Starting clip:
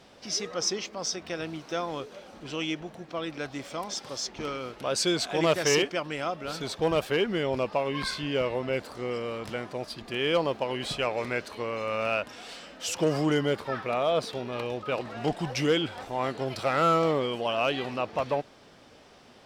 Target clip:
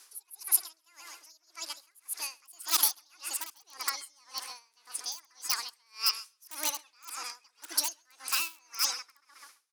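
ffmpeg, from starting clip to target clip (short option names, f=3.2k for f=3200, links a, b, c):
-filter_complex "[0:a]highpass=150,equalizer=f=160:t=q:w=4:g=9,equalizer=f=310:t=q:w=4:g=-5,equalizer=f=1.6k:t=q:w=4:g=-3,equalizer=f=2.5k:t=q:w=4:g=4,equalizer=f=3.7k:t=q:w=4:g=-5,lowpass=f=6.1k:w=0.5412,lowpass=f=6.1k:w=1.3066,asplit=2[a][b];[b]adelay=268,lowpass=f=4.8k:p=1,volume=-9dB,asplit=2[c][d];[d]adelay=268,lowpass=f=4.8k:p=1,volume=0.4,asplit=2[e][f];[f]adelay=268,lowpass=f=4.8k:p=1,volume=0.4,asplit=2[g][h];[h]adelay=268,lowpass=f=4.8k:p=1,volume=0.4[i];[c][e][g][i]amix=inputs=4:normalize=0[j];[a][j]amix=inputs=2:normalize=0,asetrate=88200,aresample=44100,asplit=2[k][l];[l]aeval=exprs='(mod(6.31*val(0)+1,2)-1)/6.31':c=same,volume=-6dB[m];[k][m]amix=inputs=2:normalize=0,aderivative,aeval=exprs='0.282*(cos(1*acos(clip(val(0)/0.282,-1,1)))-cos(1*PI/2))+0.0126*(cos(7*acos(clip(val(0)/0.282,-1,1)))-cos(7*PI/2))':c=same,aeval=exprs='val(0)*pow(10,-32*(0.5-0.5*cos(2*PI*1.8*n/s))/20)':c=same,volume=6.5dB"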